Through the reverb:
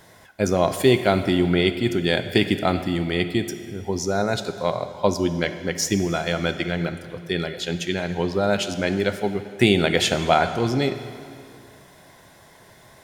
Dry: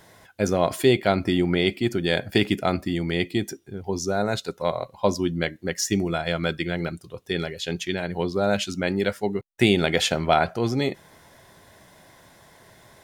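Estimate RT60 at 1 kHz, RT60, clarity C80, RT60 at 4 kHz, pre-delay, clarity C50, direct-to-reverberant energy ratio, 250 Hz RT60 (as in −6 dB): 2.3 s, 2.3 s, 11.5 dB, 2.1 s, 5 ms, 10.5 dB, 9.5 dB, 2.3 s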